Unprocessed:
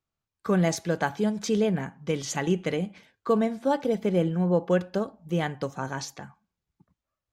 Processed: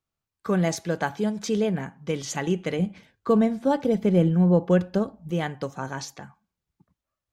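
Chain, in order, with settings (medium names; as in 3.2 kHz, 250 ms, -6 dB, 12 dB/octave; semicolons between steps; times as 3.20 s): 2.79–5.31 s: bass shelf 220 Hz +10.5 dB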